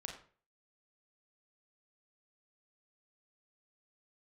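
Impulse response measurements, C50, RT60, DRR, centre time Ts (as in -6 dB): 6.0 dB, 0.40 s, 1.0 dB, 26 ms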